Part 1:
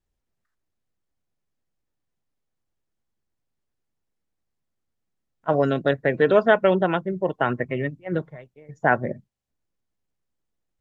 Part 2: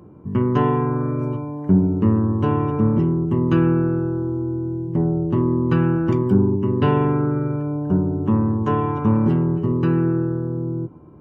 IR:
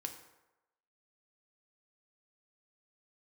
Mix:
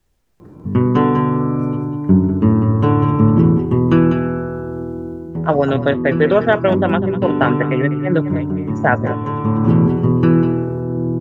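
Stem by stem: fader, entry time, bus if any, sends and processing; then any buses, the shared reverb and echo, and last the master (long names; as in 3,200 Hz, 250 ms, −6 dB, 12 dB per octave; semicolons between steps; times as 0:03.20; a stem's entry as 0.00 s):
+3.0 dB, 0.00 s, no send, echo send −14.5 dB, multiband upward and downward compressor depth 40%
−1.0 dB, 0.40 s, send −6 dB, echo send −4.5 dB, automatic ducking −15 dB, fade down 1.60 s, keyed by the first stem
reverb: on, RT60 1.0 s, pre-delay 3 ms
echo: single-tap delay 198 ms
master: automatic gain control gain up to 7.5 dB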